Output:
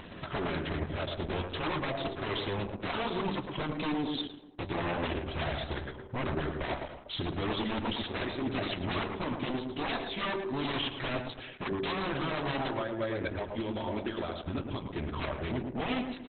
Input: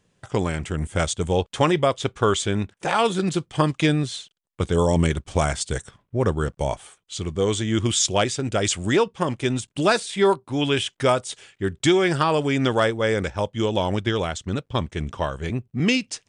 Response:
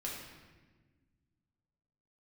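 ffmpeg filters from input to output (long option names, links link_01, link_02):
-filter_complex "[0:a]lowpass=4800,lowshelf=frequency=70:gain=-11.5,bandreject=frequency=450:width=12,aecho=1:1:3.1:0.45,bandreject=frequency=96.74:width_type=h:width=4,bandreject=frequency=193.48:width_type=h:width=4,bandreject=frequency=290.22:width_type=h:width=4,bandreject=frequency=386.96:width_type=h:width=4,bandreject=frequency=483.7:width_type=h:width=4,bandreject=frequency=580.44:width_type=h:width=4,bandreject=frequency=677.18:width_type=h:width=4,bandreject=frequency=773.92:width_type=h:width=4,bandreject=frequency=870.66:width_type=h:width=4,bandreject=frequency=967.4:width_type=h:width=4,bandreject=frequency=1064.14:width_type=h:width=4,acompressor=mode=upward:threshold=-26dB:ratio=2.5,alimiter=limit=-15dB:level=0:latency=1:release=403,asplit=3[link_01][link_02][link_03];[link_01]afade=type=out:start_time=12.69:duration=0.02[link_04];[link_02]acompressor=threshold=-29dB:ratio=16,afade=type=in:start_time=12.69:duration=0.02,afade=type=out:start_time=14.87:duration=0.02[link_05];[link_03]afade=type=in:start_time=14.87:duration=0.02[link_06];[link_04][link_05][link_06]amix=inputs=3:normalize=0,aeval=exprs='0.0447*(abs(mod(val(0)/0.0447+3,4)-2)-1)':channel_layout=same,flanger=delay=4:depth=9.6:regen=-61:speed=0.25:shape=sinusoidal,asplit=2[link_07][link_08];[link_08]adelay=111,lowpass=frequency=1400:poles=1,volume=-3.5dB,asplit=2[link_09][link_10];[link_10]adelay=111,lowpass=frequency=1400:poles=1,volume=0.52,asplit=2[link_11][link_12];[link_12]adelay=111,lowpass=frequency=1400:poles=1,volume=0.52,asplit=2[link_13][link_14];[link_14]adelay=111,lowpass=frequency=1400:poles=1,volume=0.52,asplit=2[link_15][link_16];[link_16]adelay=111,lowpass=frequency=1400:poles=1,volume=0.52,asplit=2[link_17][link_18];[link_18]adelay=111,lowpass=frequency=1400:poles=1,volume=0.52,asplit=2[link_19][link_20];[link_20]adelay=111,lowpass=frequency=1400:poles=1,volume=0.52[link_21];[link_07][link_09][link_11][link_13][link_15][link_17][link_19][link_21]amix=inputs=8:normalize=0,volume=4.5dB" -ar 48000 -c:a libopus -b:a 8k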